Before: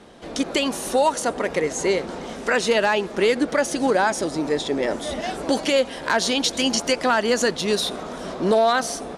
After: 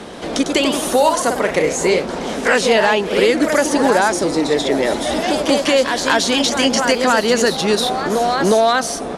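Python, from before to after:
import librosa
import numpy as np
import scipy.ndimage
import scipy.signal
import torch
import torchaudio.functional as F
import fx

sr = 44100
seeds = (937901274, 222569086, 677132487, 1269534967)

y = fx.echo_pitch(x, sr, ms=120, semitones=1, count=3, db_per_echo=-6.0)
y = fx.band_squash(y, sr, depth_pct=40)
y = F.gain(torch.from_numpy(y), 4.5).numpy()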